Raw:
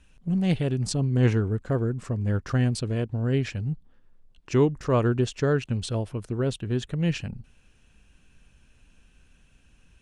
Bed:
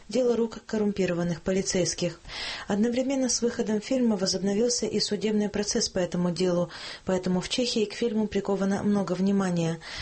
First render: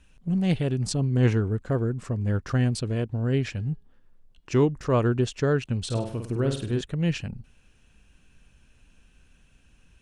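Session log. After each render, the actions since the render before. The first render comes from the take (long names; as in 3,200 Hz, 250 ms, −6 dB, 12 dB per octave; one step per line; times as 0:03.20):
0:03.51–0:04.63: hum removal 413.8 Hz, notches 14
0:05.85–0:06.81: flutter between parallel walls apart 8.7 metres, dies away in 0.49 s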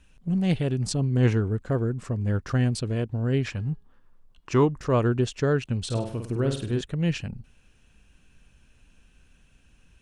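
0:03.46–0:04.78: parametric band 1,100 Hz +8.5 dB 0.74 octaves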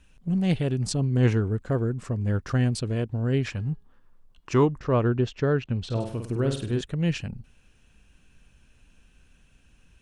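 0:04.79–0:06.00: high-frequency loss of the air 150 metres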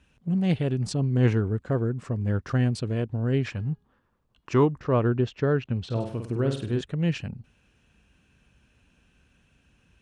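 high-pass filter 65 Hz
high-shelf EQ 6,000 Hz −9.5 dB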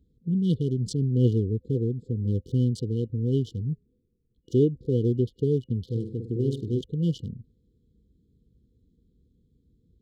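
adaptive Wiener filter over 15 samples
brick-wall band-stop 510–2,900 Hz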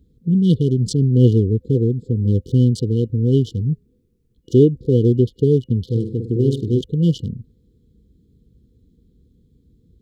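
level +9 dB
brickwall limiter −3 dBFS, peak gain reduction 1 dB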